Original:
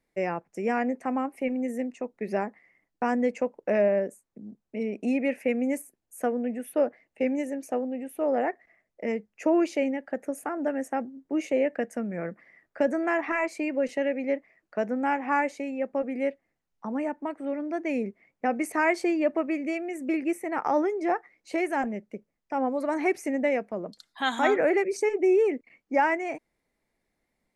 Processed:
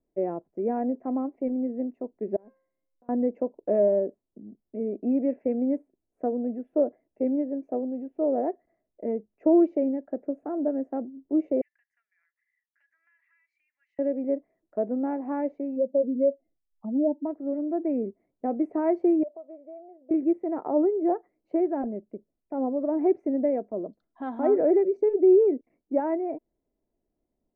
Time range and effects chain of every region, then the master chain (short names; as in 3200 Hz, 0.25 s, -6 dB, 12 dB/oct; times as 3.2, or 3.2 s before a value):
2.36–3.09 resonator 530 Hz, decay 0.59 s, mix 90% + negative-ratio compressor -54 dBFS
11.61–13.99 elliptic high-pass 1800 Hz, stop band 70 dB + compressor, threshold -46 dBFS
15.76–17.25 spectral contrast raised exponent 2.1 + comb 1.5 ms + small resonant body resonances 330/2200/3600 Hz, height 12 dB, ringing for 25 ms
19.23–20.11 ladder band-pass 710 Hz, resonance 55% + compressor 4:1, threshold -37 dBFS
whole clip: comb 3 ms, depth 32%; dynamic EQ 490 Hz, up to +3 dB, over -33 dBFS, Q 0.91; Chebyshev low-pass 510 Hz, order 2